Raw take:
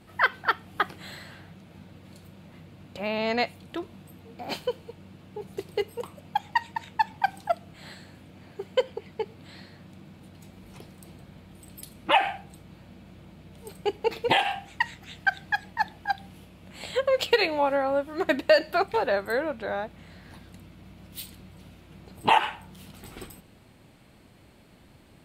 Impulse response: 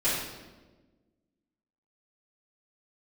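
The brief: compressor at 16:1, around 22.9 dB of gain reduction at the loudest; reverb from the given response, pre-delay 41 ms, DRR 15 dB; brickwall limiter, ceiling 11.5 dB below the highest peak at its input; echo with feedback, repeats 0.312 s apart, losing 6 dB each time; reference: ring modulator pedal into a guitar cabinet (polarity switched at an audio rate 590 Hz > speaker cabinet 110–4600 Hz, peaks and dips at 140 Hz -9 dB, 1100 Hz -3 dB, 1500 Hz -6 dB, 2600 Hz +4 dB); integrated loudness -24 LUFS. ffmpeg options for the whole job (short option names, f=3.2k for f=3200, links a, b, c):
-filter_complex "[0:a]acompressor=threshold=-38dB:ratio=16,alimiter=level_in=10.5dB:limit=-24dB:level=0:latency=1,volume=-10.5dB,aecho=1:1:312|624|936|1248|1560|1872:0.501|0.251|0.125|0.0626|0.0313|0.0157,asplit=2[a][b];[1:a]atrim=start_sample=2205,adelay=41[c];[b][c]afir=irnorm=-1:irlink=0,volume=-26.5dB[d];[a][d]amix=inputs=2:normalize=0,aeval=exprs='val(0)*sgn(sin(2*PI*590*n/s))':c=same,highpass=110,equalizer=f=140:t=q:w=4:g=-9,equalizer=f=1.1k:t=q:w=4:g=-3,equalizer=f=1.5k:t=q:w=4:g=-6,equalizer=f=2.6k:t=q:w=4:g=4,lowpass=f=4.6k:w=0.5412,lowpass=f=4.6k:w=1.3066,volume=23dB"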